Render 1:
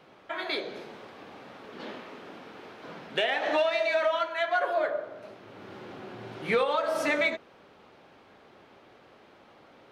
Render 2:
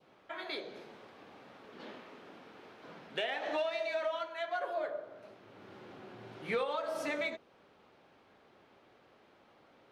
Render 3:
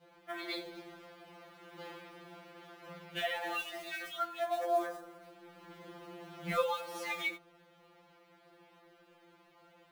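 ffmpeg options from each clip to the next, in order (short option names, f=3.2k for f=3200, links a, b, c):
-af "adynamicequalizer=threshold=0.00794:dfrequency=1700:dqfactor=1.1:tfrequency=1700:tqfactor=1.1:attack=5:release=100:ratio=0.375:range=2:mode=cutabove:tftype=bell,volume=-8dB"
-af "acrusher=bits=5:mode=log:mix=0:aa=0.000001,afftfilt=real='re*2.83*eq(mod(b,8),0)':imag='im*2.83*eq(mod(b,8),0)':win_size=2048:overlap=0.75,volume=3.5dB"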